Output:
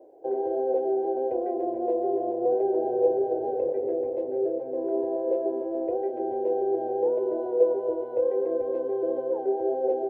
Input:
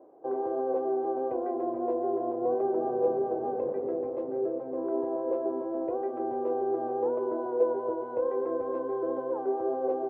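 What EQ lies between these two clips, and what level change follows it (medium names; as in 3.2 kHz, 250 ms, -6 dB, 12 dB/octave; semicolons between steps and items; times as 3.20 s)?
static phaser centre 490 Hz, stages 4; +4.5 dB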